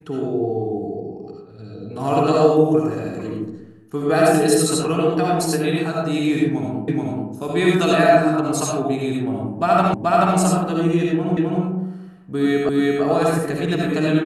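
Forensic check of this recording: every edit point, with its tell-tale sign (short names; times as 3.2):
6.88 repeat of the last 0.43 s
9.94 repeat of the last 0.43 s
11.37 repeat of the last 0.26 s
12.69 repeat of the last 0.34 s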